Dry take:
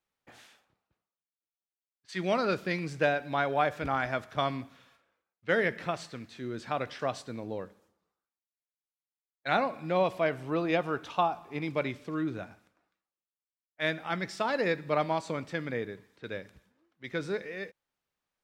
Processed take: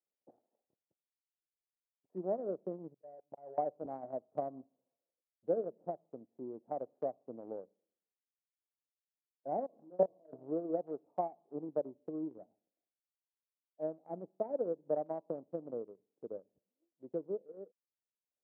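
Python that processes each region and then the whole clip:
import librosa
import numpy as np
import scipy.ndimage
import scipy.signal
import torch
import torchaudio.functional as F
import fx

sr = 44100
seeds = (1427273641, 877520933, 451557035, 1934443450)

y = fx.chain(x, sr, fx.peak_eq(hz=250.0, db=-12.0, octaves=0.8),
    fx.auto_swell(attack_ms=123.0),
    fx.level_steps(step_db=21), at=(2.94, 3.58))
y = fx.chain(y, sr, fx.level_steps(step_db=24),
    fx.peak_eq(hz=250.0, db=4.0, octaves=2.3),
    fx.doubler(ms=28.0, db=-3.5), at=(9.66, 10.33))
y = scipy.signal.sosfilt(scipy.signal.butter(6, 710.0, 'lowpass', fs=sr, output='sos'), y)
y = fx.transient(y, sr, attack_db=7, sustain_db=-10)
y = scipy.signal.sosfilt(scipy.signal.butter(2, 280.0, 'highpass', fs=sr, output='sos'), y)
y = y * 10.0 ** (-7.0 / 20.0)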